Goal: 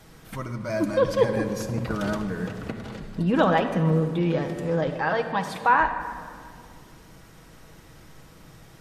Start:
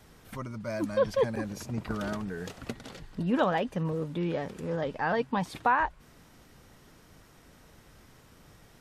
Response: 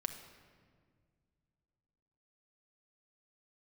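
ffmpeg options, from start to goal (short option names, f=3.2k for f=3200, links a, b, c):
-filter_complex "[0:a]asettb=1/sr,asplit=3[a][b][c];[a]atrim=end=2.374[d];[b]atrim=start=2.37:end=3.12,asetpts=PTS-STARTPTS,afade=t=in:d=0.004:c=qsin,afade=t=out:st=0.746:d=0.004:c=qsin,acrossover=split=2700[e][f];[f]acompressor=threshold=-56dB:ratio=4:attack=1:release=60[g];[e][g]amix=inputs=2:normalize=0[h];[c]atrim=start=3.116[i];[d][h]acrossfade=d=0.004:c1=hsin:c2=qsin[j];[j][i]acrossfade=d=0.004:c1=qsin:c2=hsin,asettb=1/sr,asplit=3[k][l][m];[k]atrim=end=4.894[n];[l]atrim=start=4.89:end=5.7,asetpts=PTS-STARTPTS,afade=t=in:d=0.004:c=qsin,afade=t=out:st=0.806:d=0.004:c=qsin,lowshelf=f=370:g=-10[o];[m]atrim=start=5.696[p];[n][o]acrossfade=d=0.004:c1=hsin:c2=qsin[q];[q][p]acrossfade=d=0.004:c1=qsin:c2=hsin[r];[1:a]atrim=start_sample=2205,asetrate=37485,aresample=44100[s];[r][s]afir=irnorm=-1:irlink=0,volume=5dB"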